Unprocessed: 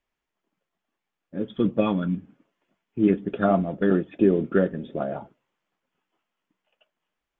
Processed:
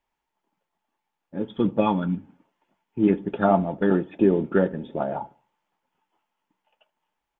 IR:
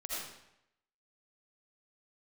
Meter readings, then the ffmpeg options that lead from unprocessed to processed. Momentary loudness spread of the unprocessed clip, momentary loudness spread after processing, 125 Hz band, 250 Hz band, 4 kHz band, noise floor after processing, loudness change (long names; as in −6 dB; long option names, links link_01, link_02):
12 LU, 13 LU, 0.0 dB, 0.0 dB, can't be measured, −82 dBFS, +0.5 dB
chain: -filter_complex "[0:a]equalizer=frequency=880:width=5.5:gain=14,asplit=2[link_01][link_02];[link_02]adelay=74,lowpass=frequency=2000:poles=1,volume=-23.5dB,asplit=2[link_03][link_04];[link_04]adelay=74,lowpass=frequency=2000:poles=1,volume=0.41,asplit=2[link_05][link_06];[link_06]adelay=74,lowpass=frequency=2000:poles=1,volume=0.41[link_07];[link_03][link_05][link_07]amix=inputs=3:normalize=0[link_08];[link_01][link_08]amix=inputs=2:normalize=0"